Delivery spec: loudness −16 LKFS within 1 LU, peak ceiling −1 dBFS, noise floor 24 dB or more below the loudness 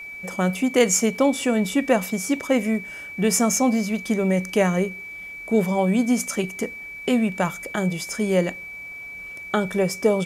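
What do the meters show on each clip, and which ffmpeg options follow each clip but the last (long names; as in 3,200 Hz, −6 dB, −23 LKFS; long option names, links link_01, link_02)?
interfering tone 2,300 Hz; level of the tone −34 dBFS; integrated loudness −22.5 LKFS; sample peak −4.5 dBFS; target loudness −16.0 LKFS
→ -af "bandreject=frequency=2300:width=30"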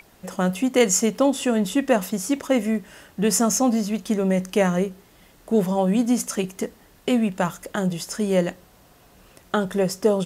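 interfering tone none found; integrated loudness −22.5 LKFS; sample peak −5.0 dBFS; target loudness −16.0 LKFS
→ -af "volume=6.5dB,alimiter=limit=-1dB:level=0:latency=1"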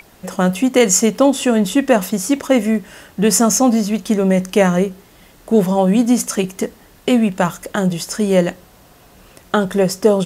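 integrated loudness −16.0 LKFS; sample peak −1.0 dBFS; background noise floor −47 dBFS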